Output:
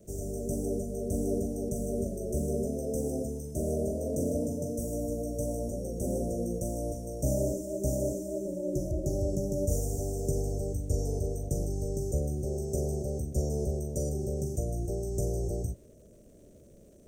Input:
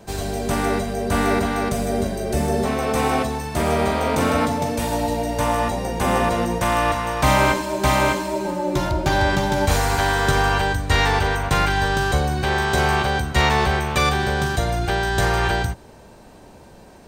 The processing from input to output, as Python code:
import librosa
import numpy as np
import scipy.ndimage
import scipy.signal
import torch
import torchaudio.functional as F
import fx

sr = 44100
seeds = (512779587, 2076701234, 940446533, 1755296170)

y = scipy.signal.sosfilt(scipy.signal.cheby1(5, 1.0, [620.0, 5800.0], 'bandstop', fs=sr, output='sos'), x)
y = fx.dmg_crackle(y, sr, seeds[0], per_s=360.0, level_db=-51.0)
y = y * librosa.db_to_amplitude(-8.5)